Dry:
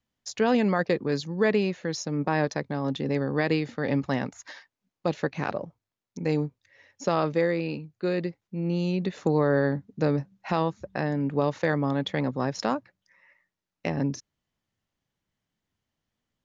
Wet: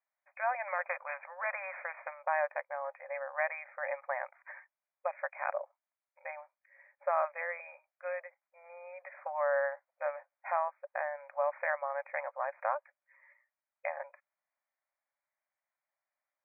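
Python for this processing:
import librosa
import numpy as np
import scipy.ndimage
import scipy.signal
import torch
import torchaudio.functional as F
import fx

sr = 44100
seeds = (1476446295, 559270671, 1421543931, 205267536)

y = fx.brickwall_bandpass(x, sr, low_hz=530.0, high_hz=2500.0)
y = fx.spectral_comp(y, sr, ratio=2.0, at=(0.66, 2.12), fade=0.02)
y = y * 10.0 ** (-3.0 / 20.0)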